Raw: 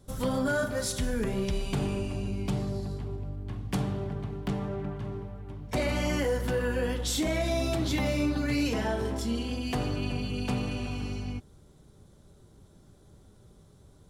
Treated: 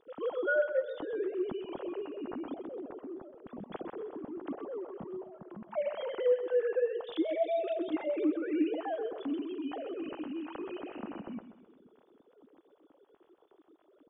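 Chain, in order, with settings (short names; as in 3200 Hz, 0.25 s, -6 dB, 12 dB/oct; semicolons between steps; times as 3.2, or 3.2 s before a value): sine-wave speech; bell 2200 Hz -13 dB 1.1 oct; in parallel at +1.5 dB: compressor, threshold -46 dBFS, peak gain reduction 25 dB; on the sum: feedback echo 0.129 s, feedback 45%, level -11.5 dB; gain -5 dB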